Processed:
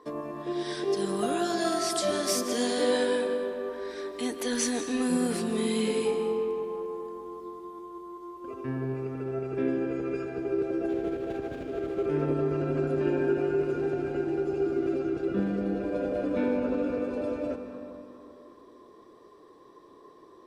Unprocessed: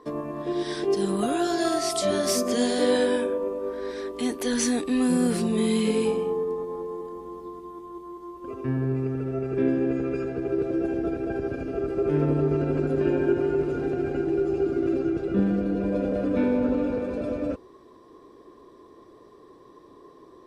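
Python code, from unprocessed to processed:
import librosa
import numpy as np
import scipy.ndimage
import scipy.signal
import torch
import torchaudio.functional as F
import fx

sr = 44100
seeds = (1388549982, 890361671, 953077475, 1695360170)

y = fx.median_filter(x, sr, points=25, at=(10.89, 12.06))
y = fx.low_shelf(y, sr, hz=220.0, db=-8.0)
y = fx.rev_freeverb(y, sr, rt60_s=2.7, hf_ratio=0.6, predelay_ms=115, drr_db=8.0)
y = y * 10.0 ** (-2.0 / 20.0)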